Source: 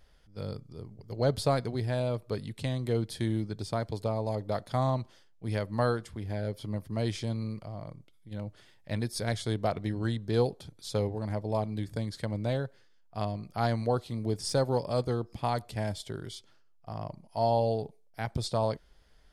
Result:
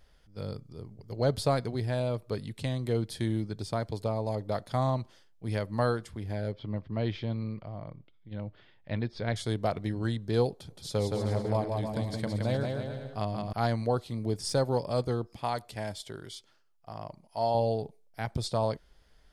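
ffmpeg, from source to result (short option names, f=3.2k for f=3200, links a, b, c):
-filter_complex "[0:a]asettb=1/sr,asplit=3[a][b][c];[a]atrim=end=6.524[d];[b]atrim=start=6.52:end=9.36,asetpts=PTS-STARTPTS,afade=t=in:d=0.004:c=qsin,afade=t=out:st=2.836:d=0.004:c=qsin,lowpass=f=3.7k:w=0.5412,lowpass=f=3.7k:w=1.3066[e];[c]atrim=start=9.356[f];[d][e]acrossfade=d=0.004:c1=hsin:c2=qsin[g];[g][f]acrossfade=d=0.004:c1=qsin:c2=hsin,asettb=1/sr,asplit=3[h][i][j];[h]atrim=end=10.534[k];[i]atrim=start=10.53:end=13.53,asetpts=PTS-STARTPTS,afade=t=in:d=0.004:c=qsin,afade=t=out:st=2.996:d=0.004:c=qsin,aecho=1:1:170|306|414.8|501.8|571.5:0.631|0.398|0.251|0.158|0.1,atrim=end_sample=132300[l];[j]atrim=start=13.526[m];[k][l]acrossfade=d=0.004:c1=hsin:c2=qsin[n];[n][m]acrossfade=d=0.004:c1=qsin:c2=hsin,asettb=1/sr,asplit=3[o][p][q];[o]atrim=end=15.274[r];[p]atrim=start=15.27:end=17.55,asetpts=PTS-STARTPTS,afade=t=in:d=0.004:c=qsin,afade=t=out:st=2.276:d=0.004:c=qsin,lowshelf=f=300:g=-7.5[s];[q]atrim=start=17.546[t];[r][s]acrossfade=d=0.004:c1=hsin:c2=qsin[u];[u][t]acrossfade=d=0.004:c1=qsin:c2=hsin"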